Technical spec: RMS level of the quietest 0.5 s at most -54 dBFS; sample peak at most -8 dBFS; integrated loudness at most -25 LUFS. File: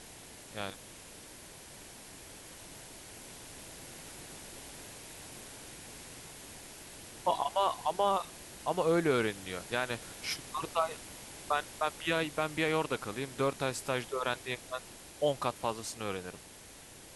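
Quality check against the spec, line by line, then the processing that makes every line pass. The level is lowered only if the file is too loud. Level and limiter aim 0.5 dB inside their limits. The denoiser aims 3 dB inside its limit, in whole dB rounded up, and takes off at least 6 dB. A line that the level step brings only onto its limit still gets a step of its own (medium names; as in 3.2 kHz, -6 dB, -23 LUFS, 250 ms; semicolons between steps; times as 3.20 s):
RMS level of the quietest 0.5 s -52 dBFS: fail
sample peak -15.5 dBFS: pass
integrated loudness -34.0 LUFS: pass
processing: noise reduction 6 dB, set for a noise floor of -52 dBFS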